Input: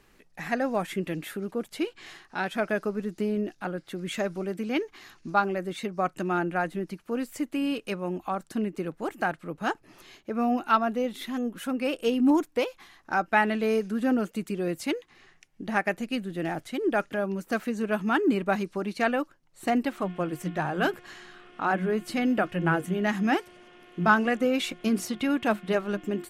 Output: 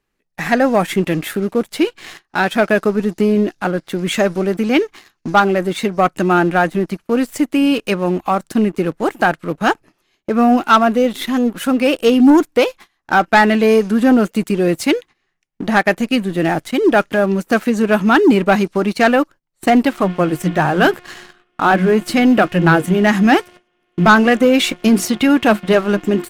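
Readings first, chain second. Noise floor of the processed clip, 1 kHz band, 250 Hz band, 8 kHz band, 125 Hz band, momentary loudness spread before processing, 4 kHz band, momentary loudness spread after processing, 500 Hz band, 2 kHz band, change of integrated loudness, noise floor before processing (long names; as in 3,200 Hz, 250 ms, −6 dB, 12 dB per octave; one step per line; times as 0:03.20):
−68 dBFS, +12.5 dB, +13.5 dB, +13.5 dB, +13.5 dB, 9 LU, +14.0 dB, 8 LU, +13.5 dB, +12.5 dB, +13.0 dB, −62 dBFS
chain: noise gate −47 dBFS, range −16 dB
leveller curve on the samples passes 2
level +6.5 dB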